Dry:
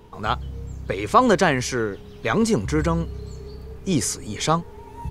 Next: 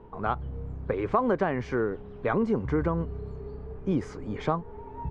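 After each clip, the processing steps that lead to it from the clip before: low-pass 1.3 kHz 12 dB/octave; peaking EQ 100 Hz -4 dB 1.9 oct; compression 4:1, threshold -22 dBFS, peak gain reduction 9.5 dB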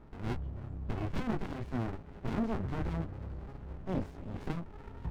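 band-passed feedback delay 330 ms, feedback 80%, band-pass 1.3 kHz, level -22.5 dB; chorus 2.4 Hz, delay 17.5 ms, depth 4.7 ms; sliding maximum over 65 samples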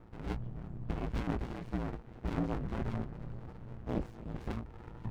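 ring modulator 57 Hz; trim +1.5 dB

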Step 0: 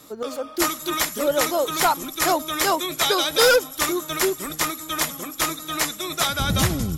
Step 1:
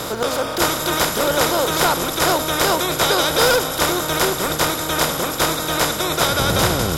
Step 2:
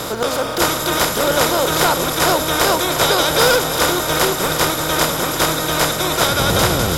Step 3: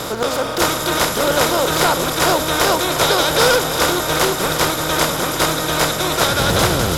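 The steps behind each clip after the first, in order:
spectral levelling over time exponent 0.4; trim -3 dB
bit-crushed delay 350 ms, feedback 80%, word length 7-bit, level -12 dB; trim +1.5 dB
loudspeaker Doppler distortion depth 0.2 ms

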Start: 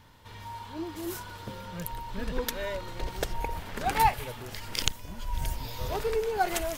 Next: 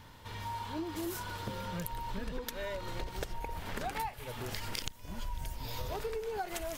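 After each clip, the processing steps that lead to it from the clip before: compression 16:1, threshold -36 dBFS, peak gain reduction 19.5 dB; trim +2.5 dB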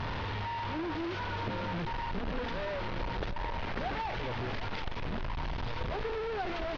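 one-bit delta coder 32 kbps, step -29.5 dBFS; distance through air 310 m; delay 762 ms -12.5 dB; trim +2 dB

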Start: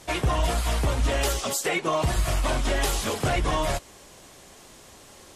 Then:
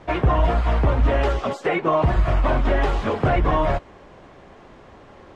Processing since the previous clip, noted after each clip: low-pass 1.7 kHz 12 dB/octave; trim +6 dB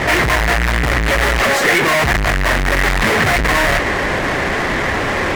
fuzz box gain 48 dB, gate -54 dBFS; peaking EQ 1.9 kHz +12 dB 0.64 oct; trim -2.5 dB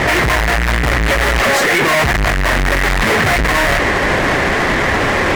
peak limiter -10 dBFS, peak gain reduction 6.5 dB; trim +4 dB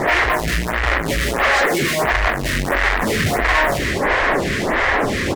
on a send: multi-tap echo 79/221 ms -10/-12.5 dB; on the sum: lamp-driven phase shifter 1.5 Hz; trim -1 dB

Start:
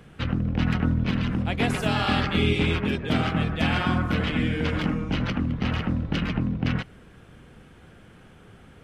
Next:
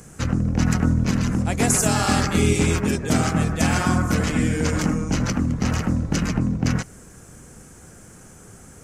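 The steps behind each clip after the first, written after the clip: resonant high shelf 4.8 kHz +13.5 dB, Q 3; trim +4 dB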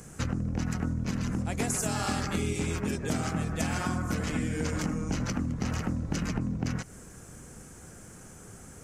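compression 5:1, threshold -24 dBFS, peak gain reduction 10 dB; trim -3 dB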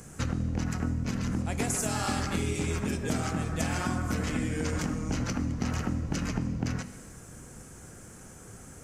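gated-style reverb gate 470 ms falling, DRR 10 dB

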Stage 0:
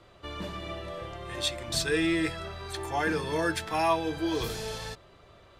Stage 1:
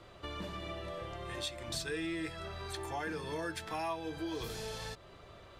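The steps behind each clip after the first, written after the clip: compression 2.5:1, threshold -42 dBFS, peak gain reduction 14 dB; trim +1 dB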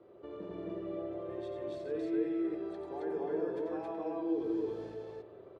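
band-pass filter 390 Hz, Q 2.5; on a send: loudspeakers at several distances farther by 31 m -7 dB, 93 m 0 dB; on the sum: spring tank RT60 1.6 s, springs 45/51 ms, chirp 50 ms, DRR 7.5 dB; trim +4 dB

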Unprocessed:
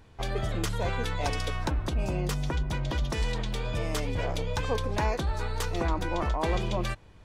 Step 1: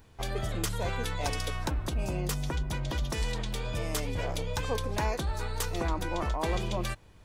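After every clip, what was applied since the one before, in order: treble shelf 8.1 kHz +12 dB; trim -2.5 dB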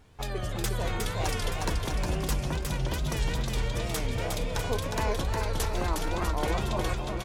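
wow and flutter 120 cents; on a send: bouncing-ball echo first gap 360 ms, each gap 0.8×, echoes 5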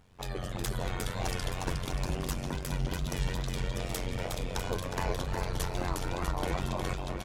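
AM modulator 91 Hz, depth 85%

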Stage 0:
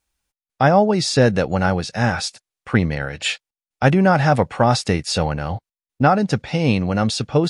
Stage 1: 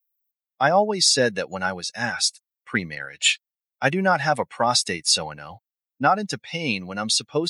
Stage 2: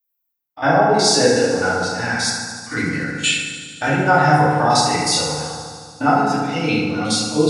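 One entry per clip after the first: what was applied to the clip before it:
expander on every frequency bin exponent 1.5; high-pass 140 Hz 12 dB/octave; tilt EQ +3 dB/octave
spectrogram pixelated in time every 50 ms; feedback echo behind a high-pass 74 ms, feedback 80%, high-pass 3.4 kHz, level -9 dB; FDN reverb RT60 1.8 s, low-frequency decay 1.2×, high-frequency decay 0.3×, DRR -8.5 dB; trim -2 dB

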